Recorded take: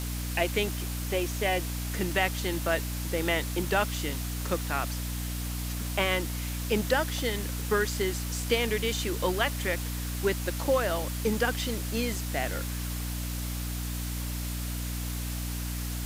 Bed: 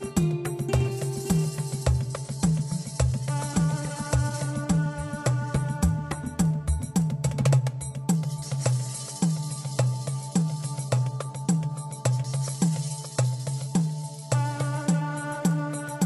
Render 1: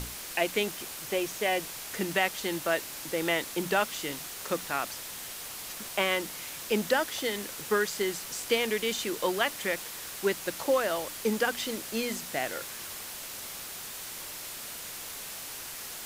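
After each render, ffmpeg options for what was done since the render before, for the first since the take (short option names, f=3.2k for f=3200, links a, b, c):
-af "bandreject=f=60:t=h:w=6,bandreject=f=120:t=h:w=6,bandreject=f=180:t=h:w=6,bandreject=f=240:t=h:w=6,bandreject=f=300:t=h:w=6"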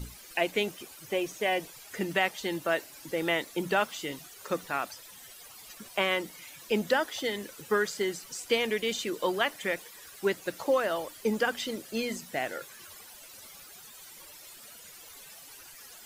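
-af "afftdn=nr=14:nf=-41"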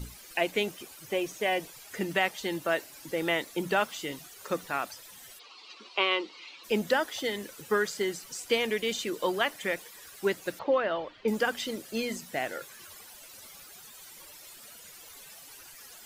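-filter_complex "[0:a]asplit=3[a][b][c];[a]afade=t=out:st=5.38:d=0.02[d];[b]highpass=f=290:w=0.5412,highpass=f=290:w=1.3066,equalizer=f=370:t=q:w=4:g=3,equalizer=f=640:t=q:w=4:g=-7,equalizer=f=1.1k:t=q:w=4:g=6,equalizer=f=1.7k:t=q:w=4:g=-8,equalizer=f=2.7k:t=q:w=4:g=6,equalizer=f=4.2k:t=q:w=4:g=7,lowpass=f=4.9k:w=0.5412,lowpass=f=4.9k:w=1.3066,afade=t=in:st=5.38:d=0.02,afade=t=out:st=6.63:d=0.02[e];[c]afade=t=in:st=6.63:d=0.02[f];[d][e][f]amix=inputs=3:normalize=0,asettb=1/sr,asplit=3[g][h][i];[g]atrim=end=10.594[j];[h]atrim=start=10.59:end=11.28,asetpts=PTS-STARTPTS,afade=t=in:d=0.004:c=qsin,afade=t=out:st=0.686:d=0.004:c=qsin,lowpass=f=3.7k:w=0.5412,lowpass=f=3.7k:w=1.3066[k];[i]atrim=start=11.276[l];[j][k]acrossfade=d=0.004:c1=hsin:c2=qsin[m];[m][l]acrossfade=d=0.004:c1=qsin:c2=hsin"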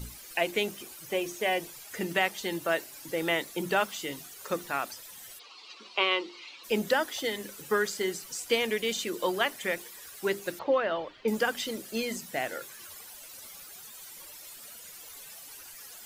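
-af "highshelf=f=7.2k:g=4.5,bandreject=f=50:t=h:w=6,bandreject=f=100:t=h:w=6,bandreject=f=150:t=h:w=6,bandreject=f=200:t=h:w=6,bandreject=f=250:t=h:w=6,bandreject=f=300:t=h:w=6,bandreject=f=350:t=h:w=6,bandreject=f=400:t=h:w=6"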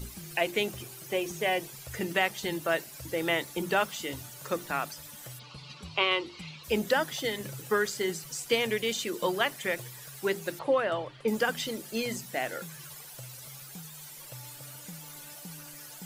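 -filter_complex "[1:a]volume=-23dB[a];[0:a][a]amix=inputs=2:normalize=0"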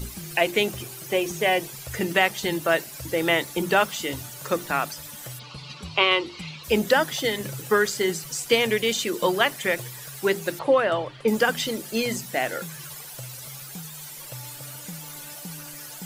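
-af "volume=6.5dB"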